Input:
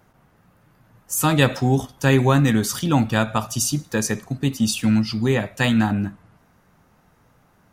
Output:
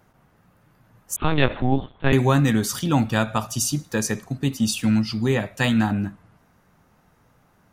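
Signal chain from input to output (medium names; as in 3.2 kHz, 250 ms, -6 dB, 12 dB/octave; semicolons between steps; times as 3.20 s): 1.16–2.13 s: LPC vocoder at 8 kHz pitch kept; trim -1.5 dB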